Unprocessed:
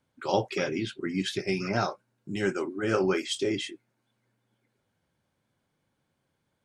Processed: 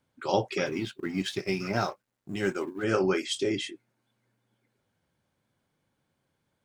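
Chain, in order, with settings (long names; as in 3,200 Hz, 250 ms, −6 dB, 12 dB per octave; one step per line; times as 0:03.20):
0:00.66–0:02.84: mu-law and A-law mismatch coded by A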